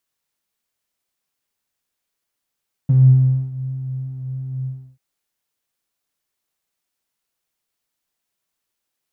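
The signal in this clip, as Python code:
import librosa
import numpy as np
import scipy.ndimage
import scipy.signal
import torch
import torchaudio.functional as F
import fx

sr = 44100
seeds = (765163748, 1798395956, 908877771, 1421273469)

y = fx.sub_patch_pwm(sr, seeds[0], note=48, wave2='saw', interval_st=0, detune_cents=16, level2_db=-9.0, sub_db=-15.0, noise_db=-30.0, kind='bandpass', cutoff_hz=110.0, q=9.2, env_oct=0.5, env_decay_s=0.23, env_sustain_pct=40, attack_ms=1.0, decay_s=0.62, sustain_db=-19, release_s=0.32, note_s=1.77, lfo_hz=3.0, width_pct=32, width_swing_pct=9)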